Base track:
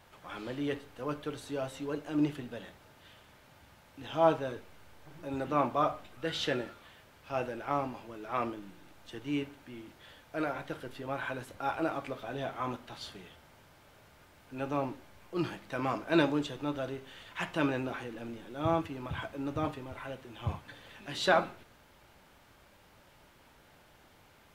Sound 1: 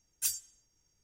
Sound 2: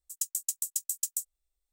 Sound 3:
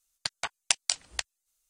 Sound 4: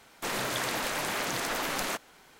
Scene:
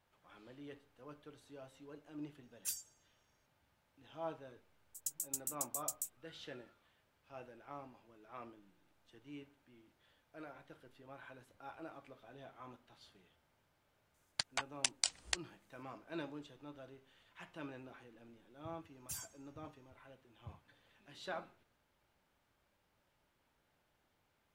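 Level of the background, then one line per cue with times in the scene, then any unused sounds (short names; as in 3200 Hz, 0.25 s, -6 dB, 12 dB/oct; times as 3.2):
base track -18 dB
2.43 add 1 -9 dB
4.85 add 2 -9 dB
14.14 add 3 -5 dB + limiter -6.5 dBFS
18.87 add 1 -9.5 dB + limiter -23.5 dBFS
not used: 4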